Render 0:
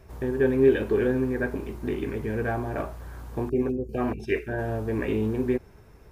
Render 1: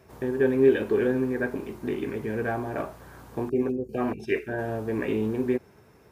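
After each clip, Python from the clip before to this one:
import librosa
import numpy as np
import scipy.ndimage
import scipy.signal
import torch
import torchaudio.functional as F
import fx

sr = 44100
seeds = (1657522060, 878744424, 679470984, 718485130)

y = scipy.signal.sosfilt(scipy.signal.butter(2, 130.0, 'highpass', fs=sr, output='sos'), x)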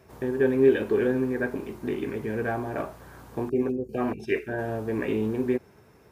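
y = x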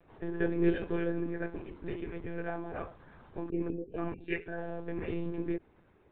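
y = fx.lpc_monotone(x, sr, seeds[0], pitch_hz=170.0, order=16)
y = F.gain(torch.from_numpy(y), -8.0).numpy()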